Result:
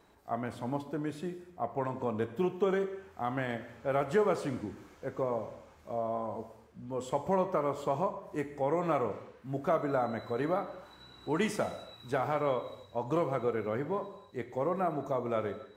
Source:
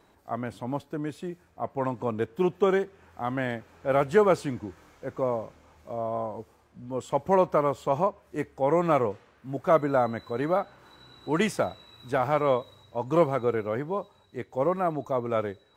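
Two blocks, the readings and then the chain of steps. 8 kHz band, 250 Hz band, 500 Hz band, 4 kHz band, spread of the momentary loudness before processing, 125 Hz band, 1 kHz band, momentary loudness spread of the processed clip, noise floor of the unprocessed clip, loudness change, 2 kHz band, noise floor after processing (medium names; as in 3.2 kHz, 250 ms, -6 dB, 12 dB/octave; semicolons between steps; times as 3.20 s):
no reading, -5.0 dB, -6.0 dB, -5.0 dB, 15 LU, -5.0 dB, -5.5 dB, 12 LU, -61 dBFS, -6.0 dB, -5.5 dB, -58 dBFS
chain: compression 2:1, threshold -27 dBFS, peak gain reduction 7 dB; gated-style reverb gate 330 ms falling, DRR 8 dB; trim -2.5 dB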